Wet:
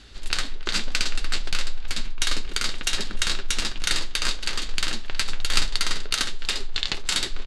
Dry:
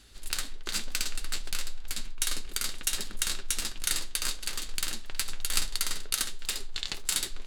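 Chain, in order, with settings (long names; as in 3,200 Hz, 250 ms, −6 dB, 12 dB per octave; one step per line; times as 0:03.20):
low-pass filter 5,100 Hz 12 dB per octave
far-end echo of a speakerphone 300 ms, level −21 dB
level +9 dB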